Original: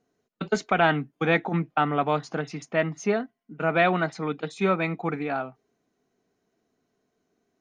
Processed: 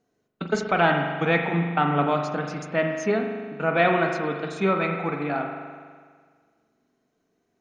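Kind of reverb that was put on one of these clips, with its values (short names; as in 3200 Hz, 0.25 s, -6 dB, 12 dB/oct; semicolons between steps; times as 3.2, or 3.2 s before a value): spring tank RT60 1.7 s, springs 41 ms, chirp 65 ms, DRR 3 dB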